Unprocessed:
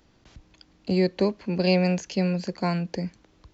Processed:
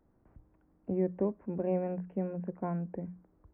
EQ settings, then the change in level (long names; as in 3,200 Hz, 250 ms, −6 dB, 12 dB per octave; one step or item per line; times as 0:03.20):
Gaussian smoothing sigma 6.5 samples
mains-hum notches 60/120/180 Hz
−7.0 dB